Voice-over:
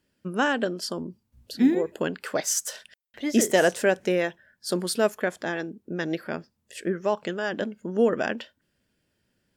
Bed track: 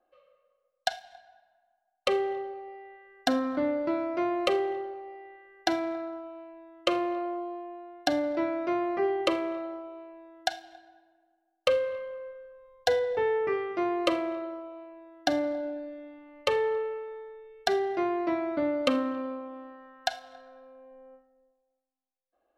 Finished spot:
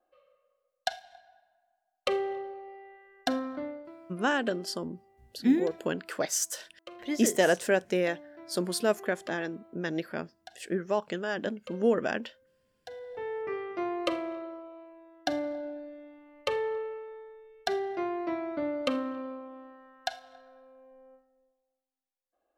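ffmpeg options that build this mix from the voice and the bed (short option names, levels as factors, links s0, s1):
-filter_complex "[0:a]adelay=3850,volume=0.668[s0];[1:a]volume=5.01,afade=t=out:st=3.22:d=0.69:silence=0.125893,afade=t=in:st=12.9:d=0.8:silence=0.149624[s1];[s0][s1]amix=inputs=2:normalize=0"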